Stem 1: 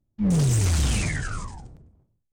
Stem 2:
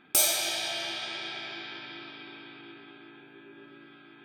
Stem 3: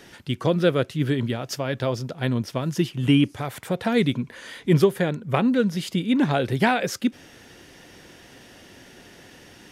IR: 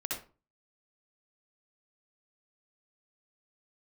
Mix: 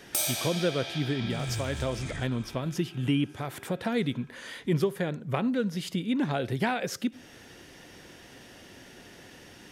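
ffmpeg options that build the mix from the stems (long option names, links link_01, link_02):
-filter_complex "[0:a]adelay=1000,volume=-5dB[link_01];[1:a]volume=-3.5dB,asplit=2[link_02][link_03];[link_03]volume=-6dB[link_04];[2:a]volume=-2.5dB,asplit=3[link_05][link_06][link_07];[link_06]volume=-24dB[link_08];[link_07]apad=whole_len=146446[link_09];[link_01][link_09]sidechaincompress=threshold=-36dB:ratio=4:attack=46:release=270[link_10];[3:a]atrim=start_sample=2205[link_11];[link_04][link_08]amix=inputs=2:normalize=0[link_12];[link_12][link_11]afir=irnorm=-1:irlink=0[link_13];[link_10][link_02][link_05][link_13]amix=inputs=4:normalize=0,acompressor=threshold=-33dB:ratio=1.5"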